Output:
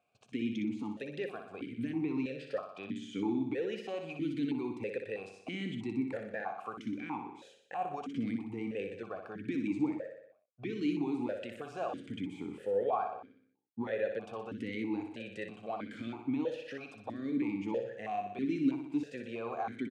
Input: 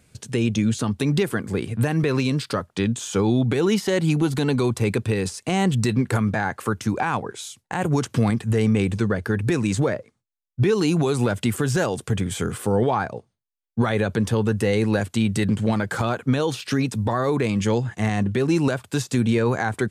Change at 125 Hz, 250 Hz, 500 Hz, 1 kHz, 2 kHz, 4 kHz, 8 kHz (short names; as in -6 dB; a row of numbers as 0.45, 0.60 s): -25.5 dB, -12.5 dB, -13.5 dB, -12.0 dB, -16.0 dB, -18.0 dB, under -30 dB